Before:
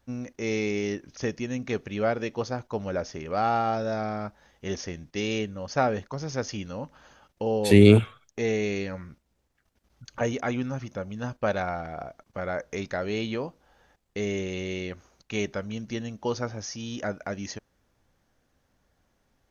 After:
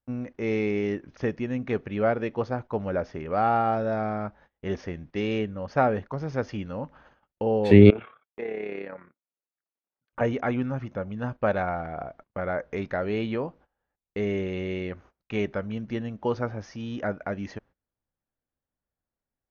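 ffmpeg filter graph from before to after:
ffmpeg -i in.wav -filter_complex "[0:a]asettb=1/sr,asplit=3[link_01][link_02][link_03];[link_01]atrim=end=7.904[link_04];[link_02]atrim=start=7.9:end=10.13,asetpts=PTS-STARTPTS,afade=type=in:duration=0.004:curve=qsin,afade=type=out:start_time=2.226:duration=0.004:curve=qsin,highpass=360,lowpass=2800,acompressor=threshold=-27dB:ratio=5:attack=3.2:release=140:knee=1:detection=peak,tremolo=f=34:d=0.621[link_05];[link_03]atrim=start=10.126[link_06];[link_04][link_05]acrossfade=duration=0.004:curve1=hsin:curve2=qsin[link_07];[link_07][link_06]acrossfade=duration=0.004:curve1=qsin:curve2=hsin,agate=range=-23dB:threshold=-53dB:ratio=16:detection=peak,lowpass=2200,volume=2dB" out.wav

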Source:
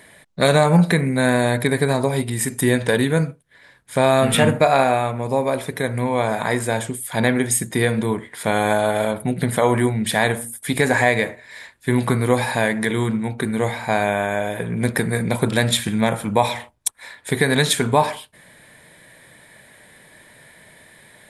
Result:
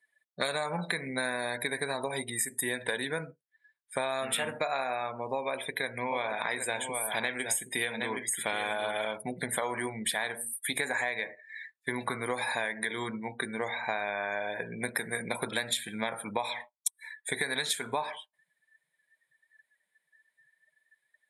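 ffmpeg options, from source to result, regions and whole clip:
ffmpeg -i in.wav -filter_complex "[0:a]asettb=1/sr,asplit=3[link_01][link_02][link_03];[link_01]atrim=end=5.344[link_04];[link_02]atrim=start=5.34:end=9.16,asetpts=PTS-STARTPTS,afade=type=in:duration=0.004:curve=qsin,afade=type=out:start_time=3.816:duration=0.004:curve=qsin,equalizer=frequency=2800:width=2.3:gain=6.5,aecho=1:1:768:0.398,atrim=end_sample=168462[link_05];[link_03]atrim=start=9.156[link_06];[link_04][link_05]acrossfade=duration=0.004:curve1=hsin:curve2=qsin[link_07];[link_07][link_06]acrossfade=duration=0.004:curve1=qsin:curve2=hsin,afftdn=noise_reduction=32:noise_floor=-34,highpass=frequency=1300:poles=1,acompressor=threshold=-28dB:ratio=6" out.wav

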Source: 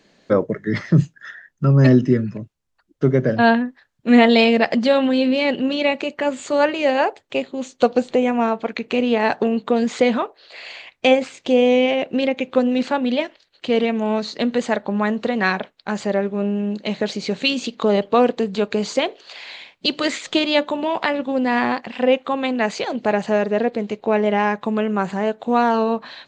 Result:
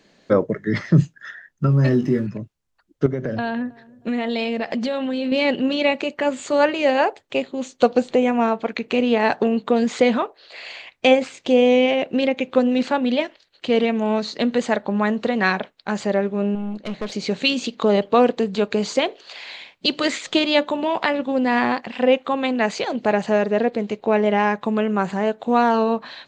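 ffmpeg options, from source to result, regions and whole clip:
ffmpeg -i in.wav -filter_complex "[0:a]asettb=1/sr,asplit=3[link_01][link_02][link_03];[link_01]atrim=end=1.664[link_04];[link_02]atrim=start=1.66:end=2.27,asetpts=PTS-STARTPTS,afade=type=in:duration=0.004:curve=qsin,afade=type=out:start_time=0.606:duration=0.004:curve=qsin,asplit=2[link_05][link_06];[link_06]adelay=21,volume=-6dB[link_07];[link_05][link_07]amix=inputs=2:normalize=0,atrim=end_sample=26901,acompressor=threshold=-17dB:ratio=2:attack=3.2:release=140:knee=1:detection=peak,aeval=exprs='sgn(val(0))*max(abs(val(0))-0.00398,0)':channel_layout=same[link_08];[link_03]atrim=start=2.266[link_09];[link_04][link_08]acrossfade=duration=0.004:curve1=hsin:curve2=qsin[link_10];[link_10][link_09]acrossfade=duration=0.004:curve1=qsin:curve2=hsin,asettb=1/sr,asplit=3[link_11][link_12][link_13];[link_11]atrim=end=3.064[link_14];[link_12]atrim=start=3.06:end=5.32,asetpts=PTS-STARTPTS,afade=type=in:duration=0.004:curve=qsin,afade=type=out:start_time=2.256:duration=0.004:curve=qsin,acompressor=threshold=-20dB:ratio=10:attack=3.2:release=140:knee=1:detection=peak,bandreject=frequency=4800:width=25,asplit=2[link_15][link_16];[link_16]adelay=317,lowpass=frequency=970:poles=1,volume=-23dB,asplit=2[link_17][link_18];[link_18]adelay=317,lowpass=frequency=970:poles=1,volume=0.41,asplit=2[link_19][link_20];[link_20]adelay=317,lowpass=frequency=970:poles=1,volume=0.41[link_21];[link_15][link_17][link_19][link_21]amix=inputs=4:normalize=0,atrim=end_sample=99666[link_22];[link_13]atrim=start=5.316[link_23];[link_14][link_22]acrossfade=duration=0.004:curve1=hsin:curve2=qsin[link_24];[link_24][link_23]acrossfade=duration=0.004:curve1=qsin:curve2=hsin,asettb=1/sr,asplit=3[link_25][link_26][link_27];[link_25]atrim=end=16.554[link_28];[link_26]atrim=start=16.55:end=17.12,asetpts=PTS-STARTPTS,afade=type=in:duration=0.004:curve=qsin,afade=type=out:start_time=0.566:duration=0.004:curve=qsin,highshelf=frequency=3700:gain=-9,aeval=exprs='(tanh(12.6*val(0)+0.5)-tanh(0.5))/12.6':channel_layout=same[link_29];[link_27]atrim=start=17.116[link_30];[link_28][link_29]acrossfade=duration=0.004:curve1=hsin:curve2=qsin[link_31];[link_31][link_30]acrossfade=duration=0.004:curve1=qsin:curve2=hsin" out.wav

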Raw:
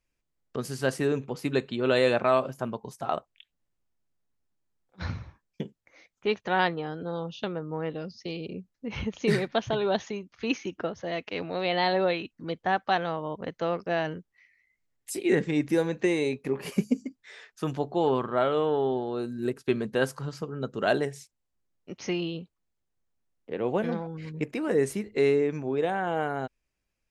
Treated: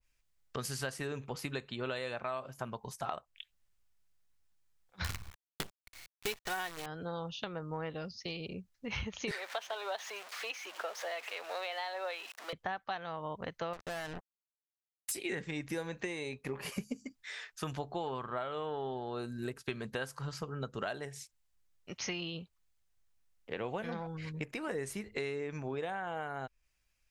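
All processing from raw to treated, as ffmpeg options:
ffmpeg -i in.wav -filter_complex "[0:a]asettb=1/sr,asplit=3[link_01][link_02][link_03];[link_01]atrim=end=5.044[link_04];[link_02]atrim=start=5.04:end=6.86,asetpts=PTS-STARTPTS,afade=type=in:duration=0.004:curve=qsin,afade=type=out:start_time=1.816:duration=0.004:curve=qsin,aecho=1:1:2.7:0.42,atrim=end_sample=80262,acrusher=bits=6:dc=4:mix=0:aa=0.000001[link_05];[link_03]atrim=start=6.856[link_06];[link_04][link_05]acrossfade=duration=0.004:curve1=hsin:curve2=qsin[link_07];[link_07][link_06]acrossfade=duration=0.004:curve1=qsin:curve2=hsin,asettb=1/sr,asplit=3[link_08][link_09][link_10];[link_08]atrim=end=9.314[link_11];[link_09]atrim=start=9.31:end=12.53,asetpts=PTS-STARTPTS,afade=type=in:duration=0.004:curve=qsin,afade=type=out:start_time=3.216:duration=0.004:curve=qsin,aeval=exprs='val(0)+0.5*0.015*sgn(val(0))':channel_layout=same,highpass=frequency=500:width=0.5412,highpass=frequency=500:width=1.3066,highshelf=frequency=7700:gain=-7.5[link_12];[link_10]atrim=start=12.526[link_13];[link_11][link_12]acrossfade=duration=0.004:curve1=hsin:curve2=qsin[link_14];[link_14][link_13]acrossfade=duration=0.004:curve1=qsin:curve2=hsin,asettb=1/sr,asplit=3[link_15][link_16][link_17];[link_15]atrim=end=13.734[link_18];[link_16]atrim=start=13.73:end=15.12,asetpts=PTS-STARTPTS,afade=type=in:duration=0.004:curve=qsin,afade=type=out:start_time=1.386:duration=0.004:curve=qsin,acompressor=threshold=-33dB:ratio=2.5:attack=3.2:release=140:knee=1:detection=peak,acrusher=bits=5:mix=0:aa=0.5[link_19];[link_17]atrim=start=15.116[link_20];[link_18][link_19]acrossfade=duration=0.004:curve1=hsin:curve2=qsin[link_21];[link_21][link_20]acrossfade=duration=0.004:curve1=qsin:curve2=hsin,equalizer=frequency=300:width=0.45:gain=-13.5,acompressor=threshold=-40dB:ratio=6,adynamicequalizer=threshold=0.00112:dfrequency=1600:dqfactor=0.7:tfrequency=1600:tqfactor=0.7:attack=5:release=100:ratio=0.375:range=2.5:mode=cutabove:tftype=highshelf,volume=6dB" out.wav

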